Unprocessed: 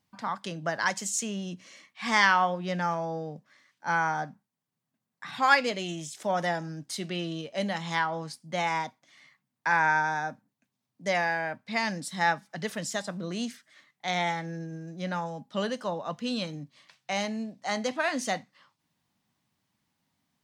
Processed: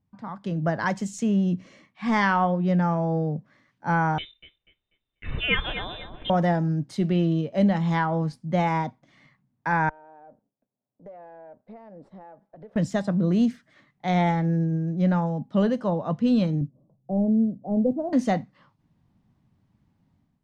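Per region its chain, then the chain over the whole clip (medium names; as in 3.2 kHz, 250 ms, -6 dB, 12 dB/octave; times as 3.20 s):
4.18–6.30 s: thinning echo 244 ms, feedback 33%, high-pass 810 Hz, level -10 dB + frequency inversion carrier 3.8 kHz
9.89–12.76 s: partial rectifier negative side -7 dB + band-pass filter 580 Hz, Q 2.4 + compression 5:1, threshold -50 dBFS
16.61–18.13 s: inverse Chebyshev low-pass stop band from 2 kHz, stop band 60 dB + modulation noise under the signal 34 dB
whole clip: tilt EQ -4.5 dB/octave; level rider gain up to 11 dB; trim -7.5 dB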